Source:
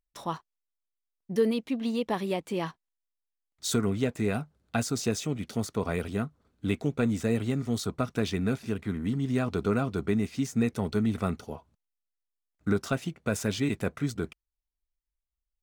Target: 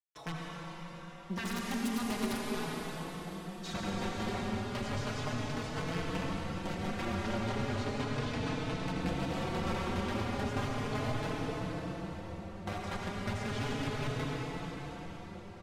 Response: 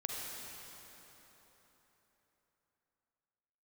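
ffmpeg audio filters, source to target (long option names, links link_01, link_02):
-filter_complex "[0:a]aeval=exprs='(mod(14.1*val(0)+1,2)-1)/14.1':channel_layout=same,asettb=1/sr,asplit=3[link_01][link_02][link_03];[link_01]atrim=end=7.144[link_04];[link_02]atrim=start=7.14:end=8.84,asetpts=PTS-STARTPTS,afade=type=in:duration=0.004:curve=qsin,afade=type=out:start_time=1.696:duration=0.004:curve=qsin,acrossover=split=8500[link_05][link_06];[link_06]acompressor=threshold=-53dB:ratio=4:attack=1:release=60[link_07];[link_05][link_07]amix=inputs=2:normalize=0[link_08];[link_03]atrim=start=8.836[link_09];[link_04][link_08]acrossfade=duration=0.004:curve1=hsin:curve2=qsin[link_10];[link_10][link_09]acrossfade=duration=0.004:curve1=qsin:curve2=hsin,acrusher=bits=8:mix=0:aa=0.000001,highshelf=frequency=11000:gain=-11,acrossover=split=190|5500[link_11][link_12][link_13];[link_11]acompressor=threshold=-36dB:ratio=4[link_14];[link_12]acompressor=threshold=-36dB:ratio=4[link_15];[link_13]acompressor=threshold=-51dB:ratio=4[link_16];[link_14][link_15][link_16]amix=inputs=3:normalize=0,highshelf=frequency=4500:gain=-8,asettb=1/sr,asplit=3[link_17][link_18][link_19];[link_17]atrim=end=1.434[link_20];[link_18]atrim=start=1.43:end=2.44,asetpts=PTS-STARTPTS,afade=type=in:duration=0.004:curve=qsin,afade=type=out:start_time=1.006:duration=0.004:curve=qsin,aeval=exprs='(mod(23.7*val(0)+1,2)-1)/23.7':channel_layout=same[link_21];[link_19]atrim=start=2.436[link_22];[link_20][link_21]acrossfade=duration=0.004:curve1=hsin:curve2=qsin[link_23];[link_23][link_22]acrossfade=duration=0.004:curve1=qsin:curve2=hsin[link_24];[1:a]atrim=start_sample=2205,asetrate=26460,aresample=44100[link_25];[link_24][link_25]afir=irnorm=-1:irlink=0,asplit=2[link_26][link_27];[link_27]adelay=4.2,afreqshift=0.35[link_28];[link_26][link_28]amix=inputs=2:normalize=1"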